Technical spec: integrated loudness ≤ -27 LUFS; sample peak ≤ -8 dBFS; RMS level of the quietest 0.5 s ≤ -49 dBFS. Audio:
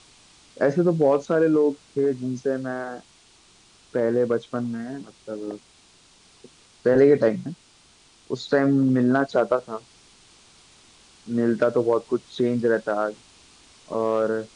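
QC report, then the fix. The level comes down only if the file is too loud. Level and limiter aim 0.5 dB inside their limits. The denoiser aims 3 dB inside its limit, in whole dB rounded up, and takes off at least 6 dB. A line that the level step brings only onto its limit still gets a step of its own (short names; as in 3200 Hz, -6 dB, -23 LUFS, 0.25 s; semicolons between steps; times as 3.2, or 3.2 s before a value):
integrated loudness -23.0 LUFS: fail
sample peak -6.5 dBFS: fail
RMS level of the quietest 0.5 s -56 dBFS: OK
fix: gain -4.5 dB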